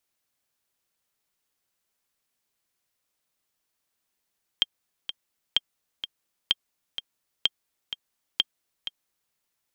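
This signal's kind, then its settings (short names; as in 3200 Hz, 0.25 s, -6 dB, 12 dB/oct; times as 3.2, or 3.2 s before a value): metronome 127 bpm, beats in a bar 2, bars 5, 3190 Hz, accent 11 dB -7 dBFS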